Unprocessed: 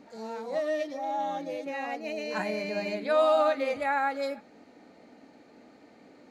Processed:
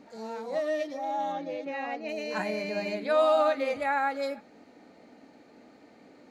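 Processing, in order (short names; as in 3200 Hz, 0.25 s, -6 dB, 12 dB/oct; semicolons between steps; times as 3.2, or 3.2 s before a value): 1.32–2.09 LPF 4600 Hz 12 dB/oct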